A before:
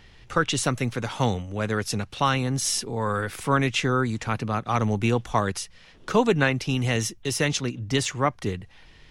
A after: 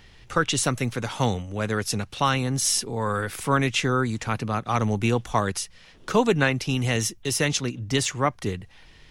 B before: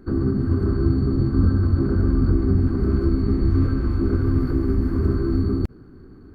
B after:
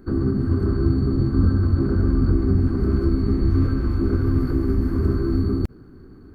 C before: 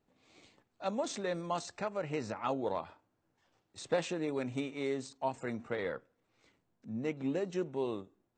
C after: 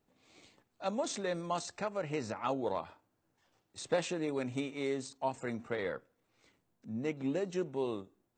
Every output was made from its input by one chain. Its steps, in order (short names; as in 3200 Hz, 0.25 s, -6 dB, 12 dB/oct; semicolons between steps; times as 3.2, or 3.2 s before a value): high shelf 6900 Hz +5.5 dB